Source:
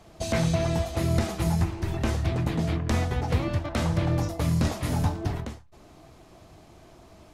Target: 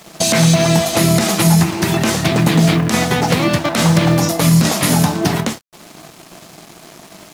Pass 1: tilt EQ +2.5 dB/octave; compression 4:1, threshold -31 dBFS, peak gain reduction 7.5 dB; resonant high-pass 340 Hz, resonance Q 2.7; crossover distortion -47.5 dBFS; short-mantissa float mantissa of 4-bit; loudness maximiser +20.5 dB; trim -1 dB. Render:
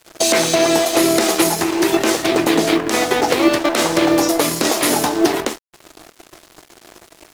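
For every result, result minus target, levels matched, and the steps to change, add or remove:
125 Hz band -17.0 dB; crossover distortion: distortion +8 dB
change: resonant high-pass 170 Hz, resonance Q 2.7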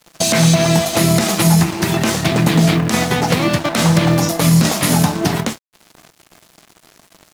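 crossover distortion: distortion +6 dB
change: crossover distortion -54 dBFS

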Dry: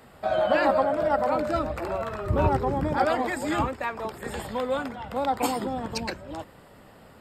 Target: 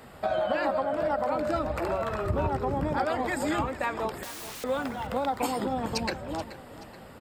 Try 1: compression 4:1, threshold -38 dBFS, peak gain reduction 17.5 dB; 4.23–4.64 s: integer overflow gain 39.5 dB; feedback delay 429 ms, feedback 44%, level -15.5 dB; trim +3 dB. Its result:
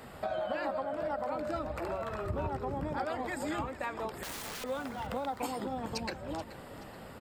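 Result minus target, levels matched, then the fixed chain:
compression: peak gain reduction +7 dB
compression 4:1, threshold -28.5 dBFS, peak gain reduction 10 dB; 4.23–4.64 s: integer overflow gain 39.5 dB; feedback delay 429 ms, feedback 44%, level -15.5 dB; trim +3 dB

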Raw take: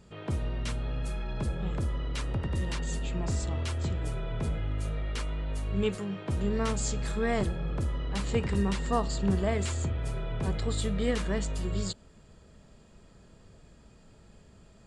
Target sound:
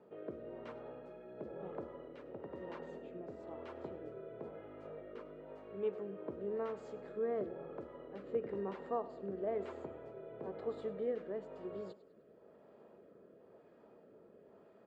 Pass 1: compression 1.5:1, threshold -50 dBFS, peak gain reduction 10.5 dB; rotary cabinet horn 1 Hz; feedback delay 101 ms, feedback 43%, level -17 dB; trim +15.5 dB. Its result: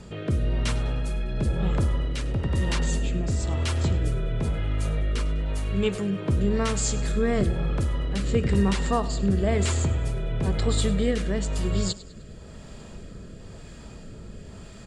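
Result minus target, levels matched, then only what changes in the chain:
500 Hz band -8.0 dB
add after compression: ladder band-pass 570 Hz, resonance 25%

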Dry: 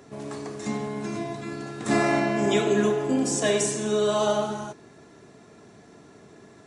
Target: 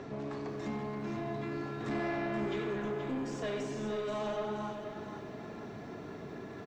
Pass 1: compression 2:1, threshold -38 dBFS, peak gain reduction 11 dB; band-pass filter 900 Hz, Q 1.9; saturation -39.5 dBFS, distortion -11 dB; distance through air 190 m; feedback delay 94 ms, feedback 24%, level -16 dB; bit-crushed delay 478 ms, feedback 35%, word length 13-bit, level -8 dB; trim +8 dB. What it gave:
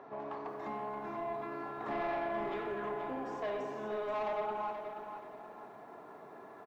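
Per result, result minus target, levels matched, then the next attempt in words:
compression: peak gain reduction -5.5 dB; 1 kHz band +5.0 dB
compression 2:1, threshold -49.5 dBFS, peak gain reduction 17 dB; band-pass filter 900 Hz, Q 1.9; saturation -39.5 dBFS, distortion -18 dB; distance through air 190 m; feedback delay 94 ms, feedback 24%, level -16 dB; bit-crushed delay 478 ms, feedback 35%, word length 13-bit, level -8 dB; trim +8 dB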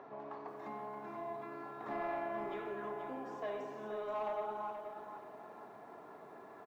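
1 kHz band +5.5 dB
compression 2:1, threshold -49.5 dBFS, peak gain reduction 17 dB; saturation -39.5 dBFS, distortion -11 dB; distance through air 190 m; feedback delay 94 ms, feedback 24%, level -16 dB; bit-crushed delay 478 ms, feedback 35%, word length 13-bit, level -8 dB; trim +8 dB

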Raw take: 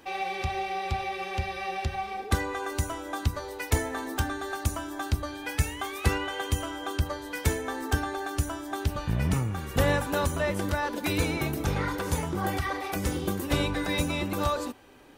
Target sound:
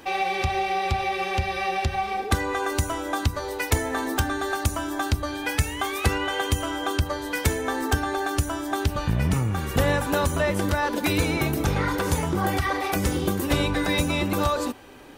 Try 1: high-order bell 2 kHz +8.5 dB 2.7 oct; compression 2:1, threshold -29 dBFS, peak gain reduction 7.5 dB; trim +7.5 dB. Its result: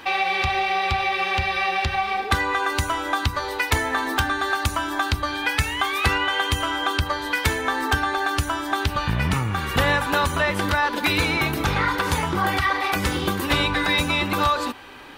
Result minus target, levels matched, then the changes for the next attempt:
2 kHz band +3.5 dB
remove: high-order bell 2 kHz +8.5 dB 2.7 oct

